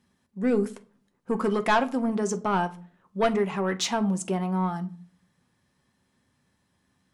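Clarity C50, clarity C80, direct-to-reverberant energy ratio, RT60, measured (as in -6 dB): 18.0 dB, 22.5 dB, 8.0 dB, 0.45 s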